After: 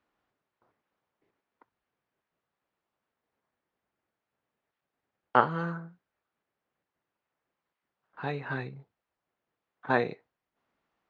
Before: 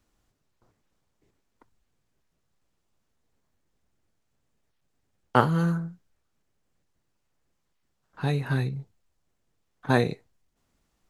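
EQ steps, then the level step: high-pass 1.3 kHz 6 dB/octave; tape spacing loss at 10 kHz 29 dB; treble shelf 4.5 kHz -11.5 dB; +7.5 dB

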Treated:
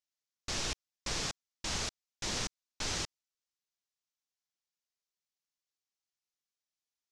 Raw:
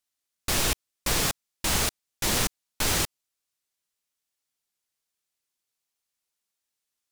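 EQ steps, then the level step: four-pole ladder low-pass 7.4 kHz, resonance 35%; -3.5 dB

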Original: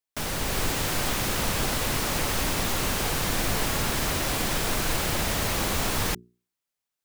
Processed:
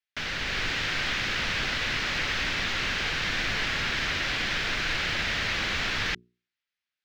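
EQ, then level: distance through air 300 m; high-order bell 3.4 kHz +15 dB 2.8 oct; treble shelf 7.2 kHz +10 dB; -7.0 dB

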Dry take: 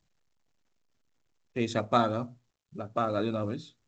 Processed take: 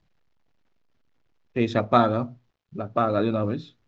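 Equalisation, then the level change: distance through air 240 m; treble shelf 6.1 kHz +7 dB; +7.0 dB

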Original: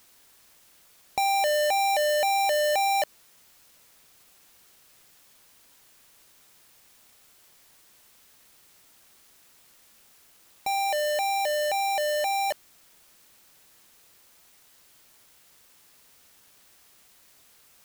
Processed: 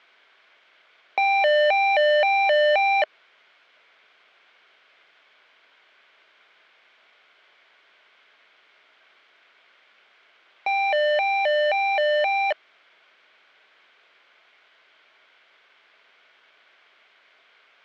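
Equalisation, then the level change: cabinet simulation 380–3800 Hz, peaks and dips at 410 Hz +5 dB, 640 Hz +7 dB, 1.1 kHz +4 dB, 1.5 kHz +10 dB, 2.2 kHz +10 dB, 3.2 kHz +6 dB; 0.0 dB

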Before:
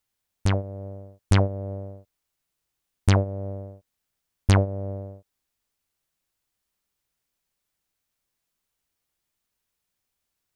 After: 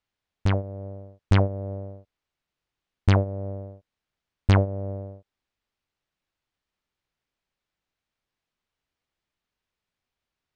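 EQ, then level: low-pass 3.9 kHz 12 dB/octave; 0.0 dB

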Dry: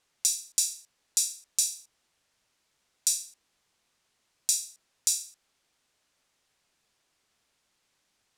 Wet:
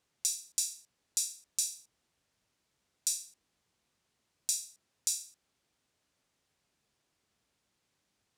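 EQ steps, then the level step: high-pass 51 Hz; bass shelf 420 Hz +9.5 dB; -6.0 dB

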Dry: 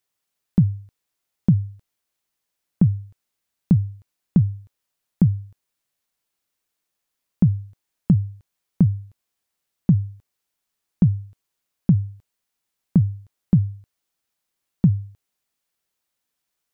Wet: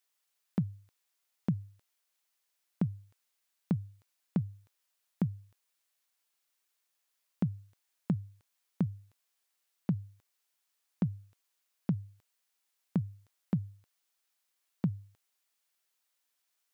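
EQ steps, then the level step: high-pass 880 Hz 6 dB/octave; 0.0 dB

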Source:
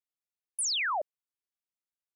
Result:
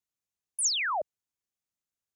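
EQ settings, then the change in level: peaking EQ 100 Hz +9 dB 2.9 oct; peaking EQ 6.6 kHz +6.5 dB 0.4 oct; 0.0 dB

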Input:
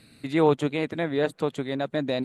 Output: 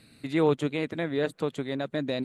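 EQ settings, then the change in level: dynamic bell 800 Hz, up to -5 dB, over -35 dBFS, Q 1.8; -2.0 dB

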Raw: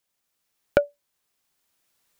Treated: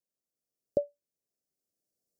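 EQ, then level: inverse Chebyshev band-stop 1–3.1 kHz, stop band 40 dB; bass shelf 95 Hz -11 dB; treble shelf 2.5 kHz -9 dB; -6.5 dB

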